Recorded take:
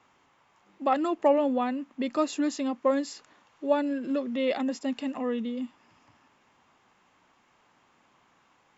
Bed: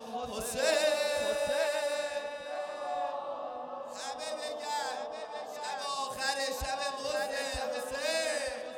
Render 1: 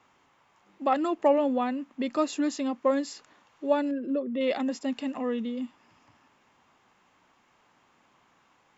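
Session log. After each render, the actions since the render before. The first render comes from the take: 3.91–4.41 formant sharpening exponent 1.5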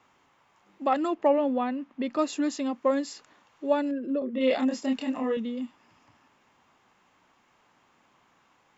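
1.14–2.19 air absorption 110 m; 4.19–5.37 doubler 27 ms -2 dB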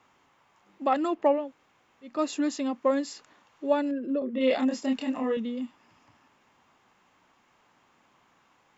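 1.4–2.13 room tone, crossfade 0.24 s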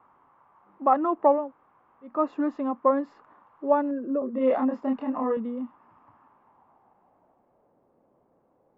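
low-pass sweep 1100 Hz -> 540 Hz, 6.21–7.76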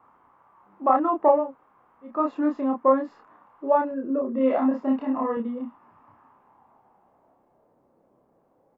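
doubler 30 ms -2.5 dB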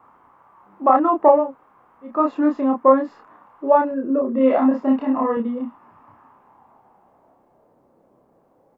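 gain +5.5 dB; limiter -2 dBFS, peak gain reduction 1.5 dB

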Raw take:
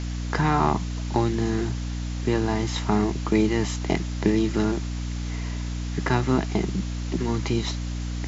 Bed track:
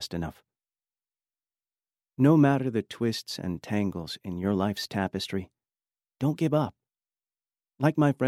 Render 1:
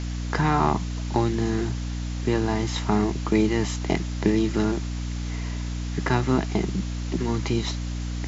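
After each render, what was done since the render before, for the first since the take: nothing audible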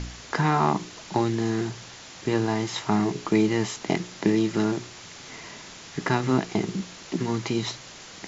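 de-hum 60 Hz, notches 9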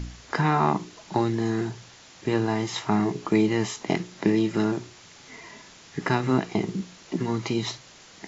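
noise print and reduce 6 dB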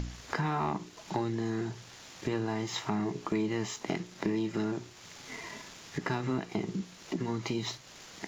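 sample leveller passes 1; compressor 2:1, threshold -38 dBFS, peak gain reduction 13 dB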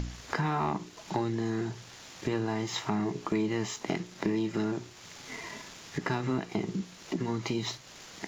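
gain +1.5 dB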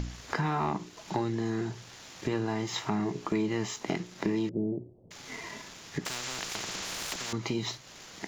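4.49–5.11 steep low-pass 590 Hz; 6.05–7.33 spectral compressor 10:1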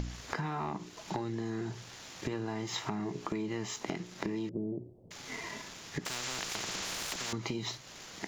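compressor, threshold -32 dBFS, peak gain reduction 7.5 dB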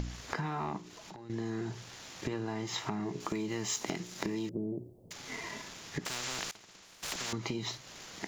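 0.78–1.3 compressor, threshold -45 dBFS; 3.2–5.13 high shelf 5300 Hz +12 dB; 6.51–7.03 expander -27 dBFS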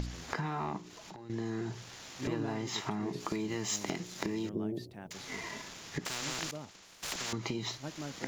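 add bed track -19.5 dB

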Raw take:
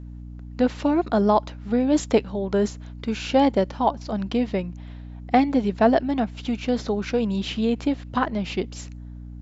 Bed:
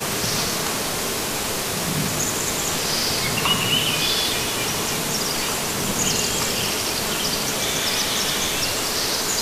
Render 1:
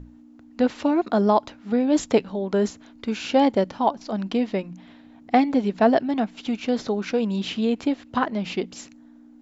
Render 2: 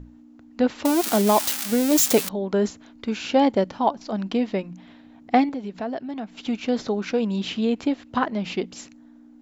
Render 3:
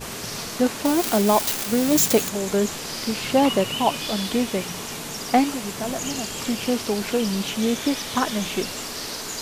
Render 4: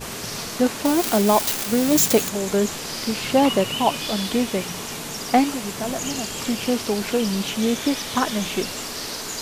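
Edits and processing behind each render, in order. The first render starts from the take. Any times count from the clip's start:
notches 60/120/180 Hz
0.85–2.29 switching spikes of -12.5 dBFS; 5.49–6.37 compressor 2:1, threshold -35 dBFS
add bed -9 dB
gain +1 dB

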